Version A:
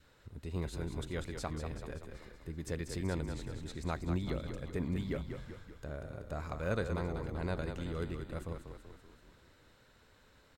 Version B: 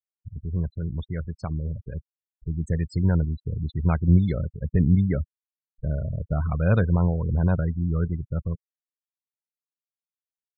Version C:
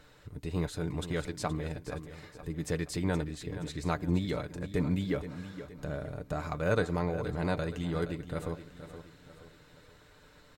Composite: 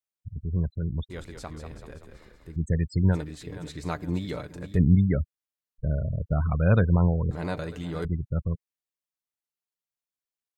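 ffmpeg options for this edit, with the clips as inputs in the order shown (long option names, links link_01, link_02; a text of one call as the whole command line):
ffmpeg -i take0.wav -i take1.wav -i take2.wav -filter_complex "[2:a]asplit=2[link_01][link_02];[1:a]asplit=4[link_03][link_04][link_05][link_06];[link_03]atrim=end=1.102[link_07];[0:a]atrim=start=1.098:end=2.562[link_08];[link_04]atrim=start=2.558:end=3.17[link_09];[link_01]atrim=start=3.11:end=4.79[link_10];[link_05]atrim=start=4.73:end=7.312[link_11];[link_02]atrim=start=7.308:end=8.052[link_12];[link_06]atrim=start=8.048[link_13];[link_07][link_08]acrossfade=duration=0.004:curve1=hsin:curve2=hsin[link_14];[link_14][link_09]acrossfade=duration=0.004:curve1=hsin:curve2=hsin[link_15];[link_15][link_10]acrossfade=duration=0.06:curve1=tri:curve2=tri[link_16];[link_16][link_11]acrossfade=duration=0.06:curve1=tri:curve2=tri[link_17];[link_17][link_12]acrossfade=duration=0.004:curve1=hsin:curve2=hsin[link_18];[link_18][link_13]acrossfade=duration=0.004:curve1=hsin:curve2=hsin" out.wav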